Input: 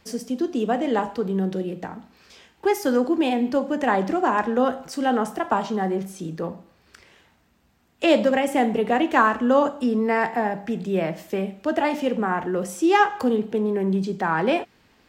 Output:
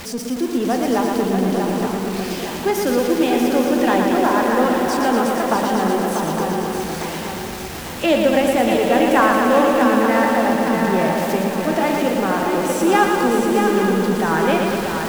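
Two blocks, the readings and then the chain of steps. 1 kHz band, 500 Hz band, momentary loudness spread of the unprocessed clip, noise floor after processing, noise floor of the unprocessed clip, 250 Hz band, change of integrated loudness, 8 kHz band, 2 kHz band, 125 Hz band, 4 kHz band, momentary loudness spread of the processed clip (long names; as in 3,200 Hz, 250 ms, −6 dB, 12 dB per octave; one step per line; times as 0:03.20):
+5.0 dB, +5.5 dB, 10 LU, −28 dBFS, −61 dBFS, +5.5 dB, +5.0 dB, +12.0 dB, +5.5 dB, +5.5 dB, +8.0 dB, 9 LU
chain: converter with a step at zero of −28.5 dBFS
feedback echo with a long and a short gap by turns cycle 853 ms, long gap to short 3 to 1, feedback 44%, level −6 dB
feedback echo at a low word length 116 ms, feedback 80%, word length 6 bits, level −4.5 dB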